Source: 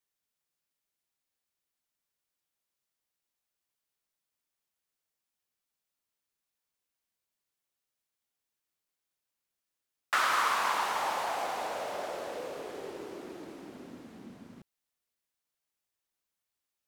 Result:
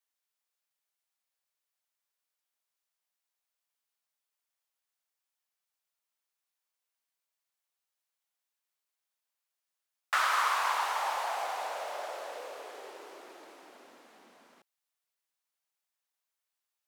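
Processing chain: Chebyshev high-pass 710 Hz, order 2

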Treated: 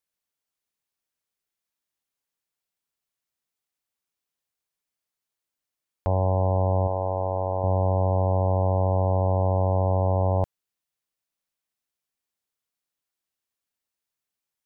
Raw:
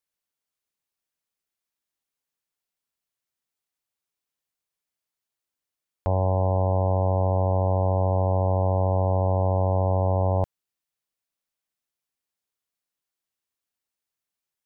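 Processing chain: 6.87–7.64 s: peaking EQ 140 Hz -12 dB 1.7 oct

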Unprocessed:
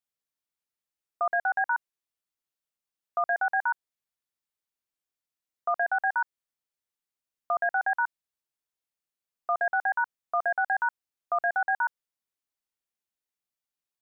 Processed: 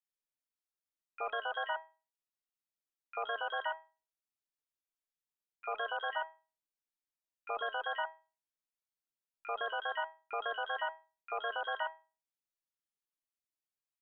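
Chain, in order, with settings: feedback comb 320 Hz, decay 0.33 s, harmonics all, mix 80%; harmony voices -7 st -4 dB, -3 st -9 dB, +12 st -8 dB

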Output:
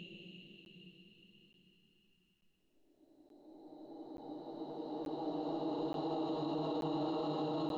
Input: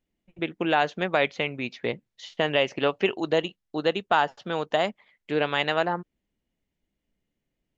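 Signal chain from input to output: touch-sensitive flanger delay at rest 6.4 ms, full sweep at -20.5 dBFS; Paulstretch 46×, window 0.25 s, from 3.57 s; peak limiter -36 dBFS, peak gain reduction 10 dB; crackling interface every 0.88 s, samples 512, zero, from 0.65 s; trim +6.5 dB

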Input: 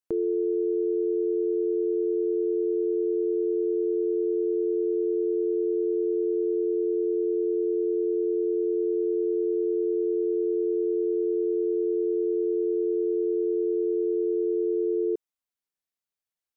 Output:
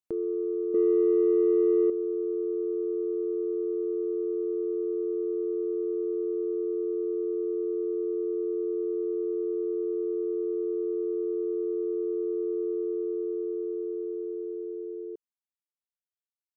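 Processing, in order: fade out at the end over 3.91 s; 0.74–1.90 s: graphic EQ 125/250/500 Hz -9/+11/+6 dB; in parallel at -12 dB: saturation -20.5 dBFS, distortion -12 dB; on the sum: trim -5.5 dB

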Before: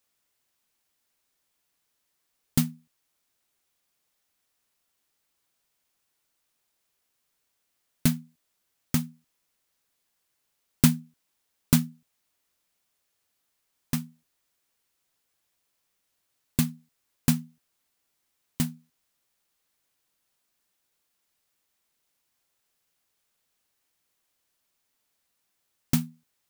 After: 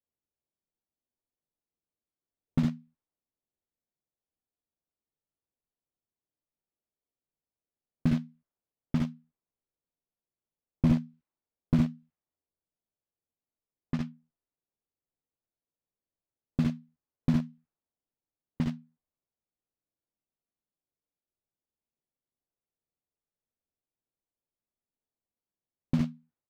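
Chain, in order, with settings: spectral noise reduction 6 dB; early reflections 59 ms -7.5 dB, 72 ms -6 dB; in parallel at -10.5 dB: bit crusher 4-bit; on the sum: distance through air 210 m; level-controlled noise filter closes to 600 Hz, open at -21 dBFS; slew-rate limiter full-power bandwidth 42 Hz; trim -4 dB

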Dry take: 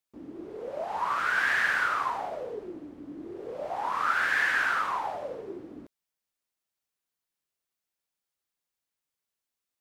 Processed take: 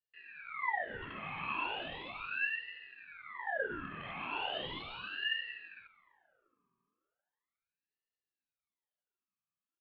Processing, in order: one-sided wavefolder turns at -25 dBFS; high-pass 130 Hz; comb 2.1 ms, depth 30%; in parallel at -2 dB: peak limiter -27.5 dBFS, peak gain reduction 11 dB; on the sum: cascade formant filter e; FDN reverb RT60 2.8 s, low-frequency decay 1.3×, high-frequency decay 0.9×, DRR 19 dB; ring modulator with a swept carrier 1.5 kHz, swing 55%, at 0.37 Hz; trim +2.5 dB

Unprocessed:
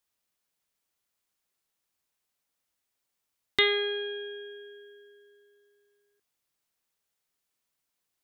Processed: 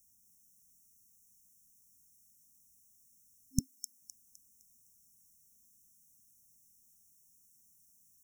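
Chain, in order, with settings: FFT band-reject 260–5400 Hz; 3.60–4.01 s: steep high-pass 200 Hz; feedback echo behind a high-pass 256 ms, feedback 37%, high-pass 4 kHz, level -5 dB; trim +16 dB

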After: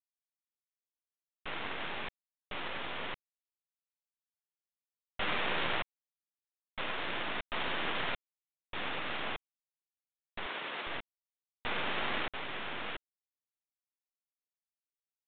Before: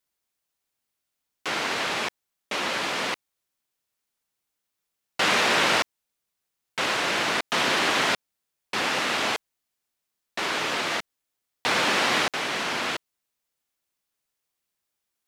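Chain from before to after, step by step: half-wave rectifier; 10.46–10.87 s: Bessel high-pass 290 Hz, order 2; trim -7 dB; µ-law 64 kbps 8 kHz

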